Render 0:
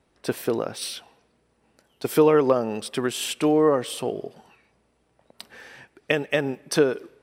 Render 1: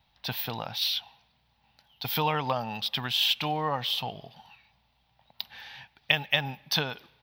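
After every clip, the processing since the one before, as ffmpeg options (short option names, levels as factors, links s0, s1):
-af "firequalizer=gain_entry='entry(130,0);entry(370,-23);entry(830,4);entry(1200,-6);entry(3600,10);entry(8500,-21);entry(15000,13)':delay=0.05:min_phase=1"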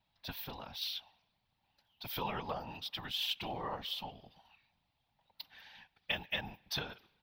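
-af "afftfilt=real='hypot(re,im)*cos(2*PI*random(0))':imag='hypot(re,im)*sin(2*PI*random(1))':win_size=512:overlap=0.75,volume=0.562"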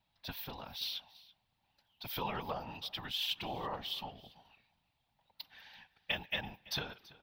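-af "aecho=1:1:333:0.0891"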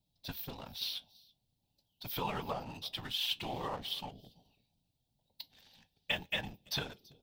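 -filter_complex "[0:a]acrossover=split=590|3800[s0][s1][s2];[s1]aeval=exprs='sgn(val(0))*max(abs(val(0))-0.00224,0)':c=same[s3];[s0][s3][s2]amix=inputs=3:normalize=0,flanger=delay=6.5:depth=1.7:regen=-70:speed=0.47:shape=triangular,volume=2.11"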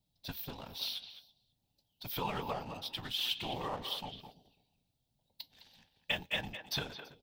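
-filter_complex "[0:a]asplit=2[s0][s1];[s1]adelay=210,highpass=300,lowpass=3400,asoftclip=type=hard:threshold=0.0447,volume=0.355[s2];[s0][s2]amix=inputs=2:normalize=0"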